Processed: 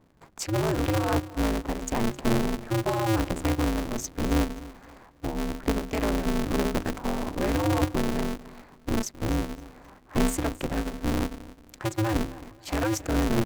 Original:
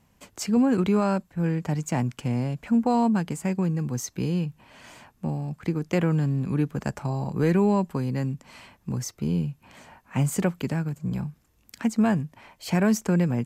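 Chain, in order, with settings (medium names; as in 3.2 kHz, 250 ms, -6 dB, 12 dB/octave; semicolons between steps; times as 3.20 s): local Wiener filter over 15 samples; hum notches 50/100/150/200/250/300 Hz; peak limiter -17.5 dBFS, peak gain reduction 6 dB; phaser 0.89 Hz, delay 2.3 ms, feedback 36%; feedback delay 264 ms, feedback 31%, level -18 dB; polarity switched at an audio rate 110 Hz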